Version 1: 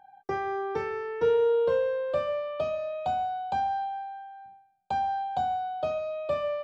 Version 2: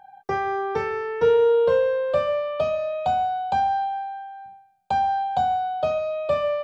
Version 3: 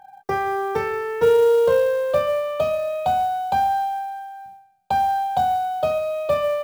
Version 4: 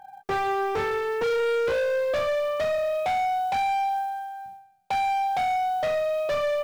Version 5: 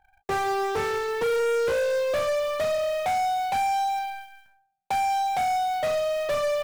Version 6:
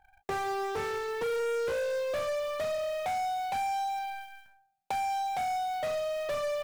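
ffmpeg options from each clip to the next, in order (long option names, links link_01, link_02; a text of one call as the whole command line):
ffmpeg -i in.wav -af "equalizer=frequency=320:width_type=o:width=0.33:gain=-9.5,volume=6.5dB" out.wav
ffmpeg -i in.wav -af "acrusher=bits=7:mode=log:mix=0:aa=0.000001,volume=2dB" out.wav
ffmpeg -i in.wav -af "asoftclip=type=hard:threshold=-23dB" out.wav
ffmpeg -i in.wav -af "aeval=exprs='0.075*(cos(1*acos(clip(val(0)/0.075,-1,1)))-cos(1*PI/2))+0.015*(cos(3*acos(clip(val(0)/0.075,-1,1)))-cos(3*PI/2))+0.00237*(cos(4*acos(clip(val(0)/0.075,-1,1)))-cos(4*PI/2))+0.00473*(cos(6*acos(clip(val(0)/0.075,-1,1)))-cos(6*PI/2))+0.00596*(cos(7*acos(clip(val(0)/0.075,-1,1)))-cos(7*PI/2))':channel_layout=same" out.wav
ffmpeg -i in.wav -af "acompressor=threshold=-36dB:ratio=2" out.wav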